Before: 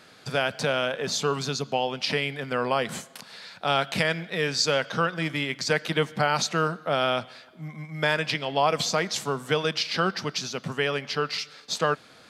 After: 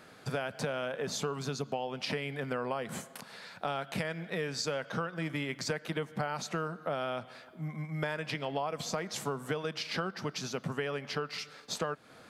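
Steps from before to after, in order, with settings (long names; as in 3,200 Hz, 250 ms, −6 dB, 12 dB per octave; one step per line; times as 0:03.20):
parametric band 4,300 Hz −8 dB 1.9 octaves
downward compressor, threshold −31 dBFS, peak gain reduction 12.5 dB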